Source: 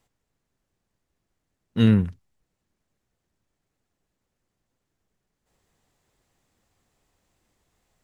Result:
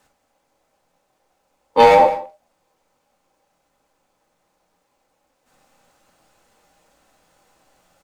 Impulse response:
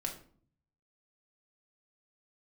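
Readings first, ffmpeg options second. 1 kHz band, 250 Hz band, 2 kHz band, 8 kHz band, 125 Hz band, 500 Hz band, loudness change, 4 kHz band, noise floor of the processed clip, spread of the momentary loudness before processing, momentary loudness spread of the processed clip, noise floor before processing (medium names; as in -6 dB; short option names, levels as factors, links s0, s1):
+32.5 dB, -9.0 dB, +14.5 dB, no reading, -15.5 dB, +19.5 dB, +6.5 dB, +8.5 dB, -70 dBFS, 14 LU, 14 LU, -81 dBFS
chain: -filter_complex "[0:a]highpass=f=73:p=1,equalizer=f=100:t=o:w=0.68:g=4.5,aeval=exprs='val(0)*sin(2*PI*700*n/s)':c=same,volume=5.31,asoftclip=hard,volume=0.188,aecho=1:1:170:0.119[s0];[1:a]atrim=start_sample=2205,atrim=end_sample=3969[s1];[s0][s1]afir=irnorm=-1:irlink=0,alimiter=level_in=5.62:limit=0.891:release=50:level=0:latency=1,volume=0.891"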